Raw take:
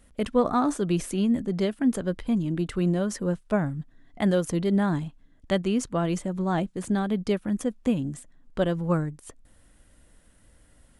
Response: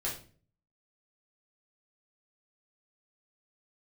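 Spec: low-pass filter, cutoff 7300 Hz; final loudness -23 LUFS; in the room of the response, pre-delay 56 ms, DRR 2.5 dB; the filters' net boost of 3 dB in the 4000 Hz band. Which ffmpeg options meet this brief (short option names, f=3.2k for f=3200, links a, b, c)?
-filter_complex "[0:a]lowpass=7.3k,equalizer=f=4k:t=o:g=4.5,asplit=2[a][b];[1:a]atrim=start_sample=2205,adelay=56[c];[b][c]afir=irnorm=-1:irlink=0,volume=-6dB[d];[a][d]amix=inputs=2:normalize=0,volume=1.5dB"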